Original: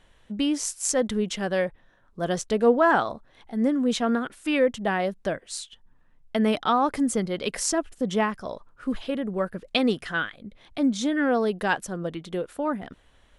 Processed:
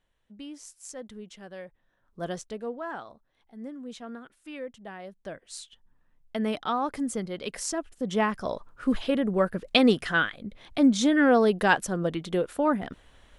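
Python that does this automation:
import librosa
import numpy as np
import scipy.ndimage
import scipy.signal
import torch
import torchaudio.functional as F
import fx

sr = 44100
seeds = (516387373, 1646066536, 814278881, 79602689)

y = fx.gain(x, sr, db=fx.line((1.63, -17.0), (2.23, -5.5), (2.71, -16.5), (5.01, -16.5), (5.59, -6.0), (7.93, -6.0), (8.45, 3.0)))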